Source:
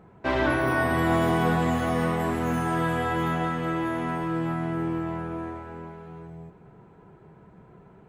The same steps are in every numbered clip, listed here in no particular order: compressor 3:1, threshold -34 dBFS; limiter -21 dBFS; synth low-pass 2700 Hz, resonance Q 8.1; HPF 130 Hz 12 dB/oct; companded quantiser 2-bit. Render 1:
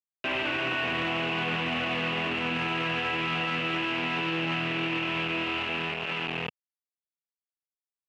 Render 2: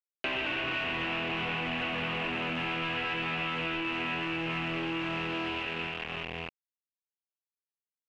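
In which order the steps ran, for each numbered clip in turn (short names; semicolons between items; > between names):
compressor > companded quantiser > synth low-pass > limiter > HPF; HPF > companded quantiser > limiter > synth low-pass > compressor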